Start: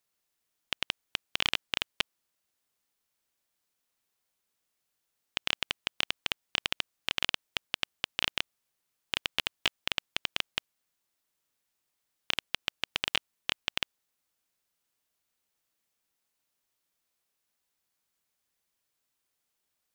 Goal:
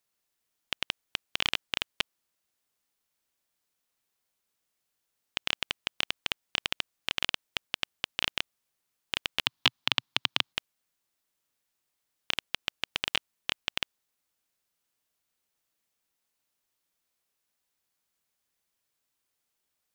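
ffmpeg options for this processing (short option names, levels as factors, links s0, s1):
-filter_complex "[0:a]asettb=1/sr,asplit=3[s0][s1][s2];[s0]atrim=end=9.464[s3];[s1]atrim=start=9.46:end=10.53,asetpts=PTS-STARTPTS,afade=t=in:d=0.004:c=qsin,afade=t=out:st=1.066:d=0.004:c=qsin,equalizer=f=125:t=o:w=1:g=9,equalizer=f=250:t=o:w=1:g=7,equalizer=f=500:t=o:w=1:g=-4,equalizer=f=1000:t=o:w=1:g=8,equalizer=f=4000:t=o:w=1:g=8,equalizer=f=8000:t=o:w=1:g=-3[s4];[s2]atrim=start=10.526[s5];[s3][s4]acrossfade=d=0.004:c1=hsin:c2=qsin[s6];[s6][s5]acrossfade=d=0.004:c1=qsin:c2=hsin"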